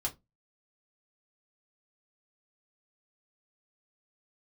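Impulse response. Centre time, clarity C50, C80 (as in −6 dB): 10 ms, 20.0 dB, 29.5 dB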